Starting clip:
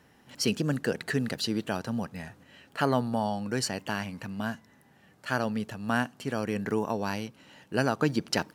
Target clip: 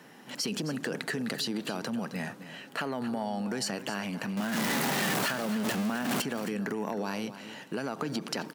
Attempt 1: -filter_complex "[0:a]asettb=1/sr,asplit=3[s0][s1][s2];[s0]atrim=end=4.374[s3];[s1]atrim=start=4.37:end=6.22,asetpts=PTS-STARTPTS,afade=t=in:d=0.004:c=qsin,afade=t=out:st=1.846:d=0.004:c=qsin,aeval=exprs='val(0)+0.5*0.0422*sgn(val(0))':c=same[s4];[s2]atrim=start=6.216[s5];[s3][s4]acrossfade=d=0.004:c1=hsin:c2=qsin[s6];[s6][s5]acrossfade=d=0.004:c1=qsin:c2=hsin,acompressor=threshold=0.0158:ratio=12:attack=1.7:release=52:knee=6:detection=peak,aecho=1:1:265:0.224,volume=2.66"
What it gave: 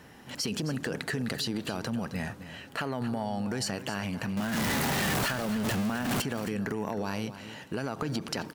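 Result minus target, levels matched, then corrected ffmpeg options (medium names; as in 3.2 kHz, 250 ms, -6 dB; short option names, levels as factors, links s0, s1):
125 Hz band +4.5 dB
-filter_complex "[0:a]asettb=1/sr,asplit=3[s0][s1][s2];[s0]atrim=end=4.374[s3];[s1]atrim=start=4.37:end=6.22,asetpts=PTS-STARTPTS,afade=t=in:d=0.004:c=qsin,afade=t=out:st=1.846:d=0.004:c=qsin,aeval=exprs='val(0)+0.5*0.0422*sgn(val(0))':c=same[s4];[s2]atrim=start=6.216[s5];[s3][s4]acrossfade=d=0.004:c1=hsin:c2=qsin[s6];[s6][s5]acrossfade=d=0.004:c1=qsin:c2=hsin,acompressor=threshold=0.0158:ratio=12:attack=1.7:release=52:knee=6:detection=peak,highpass=f=160:w=0.5412,highpass=f=160:w=1.3066,aecho=1:1:265:0.224,volume=2.66"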